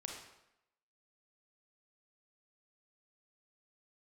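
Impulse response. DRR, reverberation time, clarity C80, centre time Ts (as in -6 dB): 0.5 dB, 0.85 s, 5.5 dB, 45 ms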